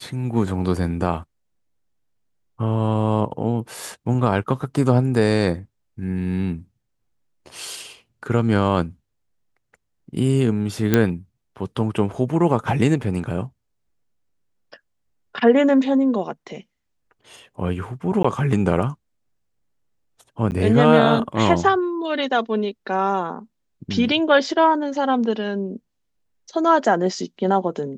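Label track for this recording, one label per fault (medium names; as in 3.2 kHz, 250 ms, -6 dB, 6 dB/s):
10.940000	10.940000	pop -3 dBFS
18.230000	18.240000	dropout 14 ms
20.510000	20.520000	dropout 9.6 ms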